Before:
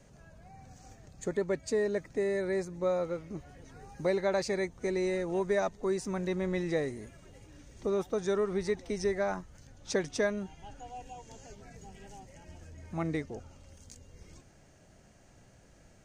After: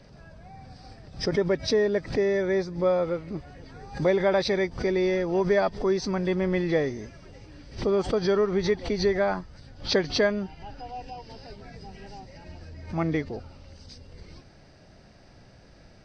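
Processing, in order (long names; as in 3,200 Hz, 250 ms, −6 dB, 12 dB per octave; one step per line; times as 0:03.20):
hearing-aid frequency compression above 2,700 Hz 1.5 to 1
background raised ahead of every attack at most 150 dB per second
level +6.5 dB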